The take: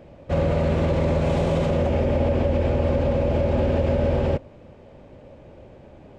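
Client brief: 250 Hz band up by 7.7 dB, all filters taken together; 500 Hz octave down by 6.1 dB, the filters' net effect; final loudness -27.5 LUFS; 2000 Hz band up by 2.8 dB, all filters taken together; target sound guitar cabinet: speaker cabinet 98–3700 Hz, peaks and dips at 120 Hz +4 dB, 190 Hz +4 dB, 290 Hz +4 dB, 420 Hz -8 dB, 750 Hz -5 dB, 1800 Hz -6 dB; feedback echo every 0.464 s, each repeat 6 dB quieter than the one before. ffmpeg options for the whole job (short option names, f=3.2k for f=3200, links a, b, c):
-af "highpass=98,equalizer=f=120:t=q:w=4:g=4,equalizer=f=190:t=q:w=4:g=4,equalizer=f=290:t=q:w=4:g=4,equalizer=f=420:t=q:w=4:g=-8,equalizer=f=750:t=q:w=4:g=-5,equalizer=f=1.8k:t=q:w=4:g=-6,lowpass=f=3.7k:w=0.5412,lowpass=f=3.7k:w=1.3066,equalizer=f=250:t=o:g=8.5,equalizer=f=500:t=o:g=-6.5,equalizer=f=2k:t=o:g=7,aecho=1:1:464|928|1392|1856|2320|2784:0.501|0.251|0.125|0.0626|0.0313|0.0157,volume=-7dB"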